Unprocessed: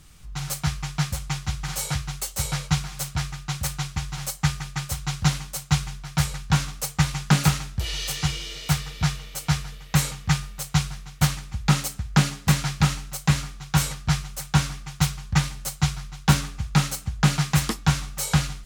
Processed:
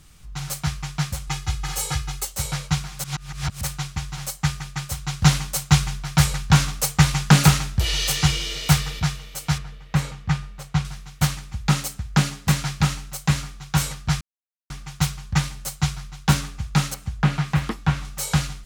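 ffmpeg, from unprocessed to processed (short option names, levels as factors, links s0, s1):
-filter_complex "[0:a]asettb=1/sr,asplit=3[s0][s1][s2];[s0]atrim=end=1.274[s3];[s1]atrim=start=1.27:end=2.25,asetpts=PTS-STARTPTS,afade=t=in:d=0.004:c=qsin,afade=t=out:st=0.976:d=0.004:c=qsin,aecho=1:1:2.4:0.78,atrim=end_sample=43218[s4];[s2]atrim=start=2.246[s5];[s3][s4]acrossfade=d=0.004:c1=hsin:c2=qsin[s6];[s6][s5]acrossfade=d=0.004:c1=qsin:c2=hsin,asettb=1/sr,asplit=3[s7][s8][s9];[s7]atrim=end=5.224[s10];[s8]atrim=start=5.22:end=9,asetpts=PTS-STARTPTS,afade=t=in:d=0.004:c=qsin,afade=t=out:st=3.776:d=0.004:c=qsin,acontrast=61[s11];[s9]atrim=start=8.996[s12];[s10][s11]acrossfade=d=0.004:c1=hsin:c2=qsin[s13];[s13][s12]acrossfade=d=0.004:c1=qsin:c2=hsin,asettb=1/sr,asplit=3[s14][s15][s16];[s14]atrim=end=9.584[s17];[s15]atrim=start=9.58:end=10.85,asetpts=PTS-STARTPTS,afade=t=in:d=0.004:c=qsin,afade=t=out:st=1.266:d=0.004:c=qsin,lowpass=f=2100:p=1[s18];[s16]atrim=start=10.846[s19];[s17][s18]acrossfade=d=0.004:c1=hsin:c2=qsin[s20];[s20][s19]acrossfade=d=0.004:c1=qsin:c2=hsin,asettb=1/sr,asplit=3[s21][s22][s23];[s21]atrim=end=16.944[s24];[s22]atrim=start=16.94:end=18.05,asetpts=PTS-STARTPTS,afade=t=in:d=0.004:c=qsin,afade=t=out:st=1.106:d=0.004:c=qsin,acrossover=split=3200[s25][s26];[s26]acompressor=threshold=0.00562:ratio=4:attack=1:release=60[s27];[s25][s27]amix=inputs=2:normalize=0[s28];[s23]atrim=start=18.046[s29];[s24][s28]acrossfade=d=0.004:c1=hsin:c2=qsin[s30];[s30][s29]acrossfade=d=0.004:c1=qsin:c2=hsin,asplit=5[s31][s32][s33][s34][s35];[s31]atrim=end=3.042[s36];[s32]atrim=start=3.038:end=3.612,asetpts=PTS-STARTPTS,areverse[s37];[s33]atrim=start=3.608:end=14.21,asetpts=PTS-STARTPTS,afade=t=out:st=10.598:d=0.004:c=hsin[s38];[s34]atrim=start=14.21:end=14.7,asetpts=PTS-STARTPTS,volume=0[s39];[s35]atrim=start=14.7,asetpts=PTS-STARTPTS,afade=t=in:d=0.004:c=hsin[s40];[s36][s37]acrossfade=d=0.004:c1=hsin:c2=hsin[s41];[s38][s39][s40]concat=n=3:v=0:a=1[s42];[s41][s42]acrossfade=d=0.004:c1=hsin:c2=hsin"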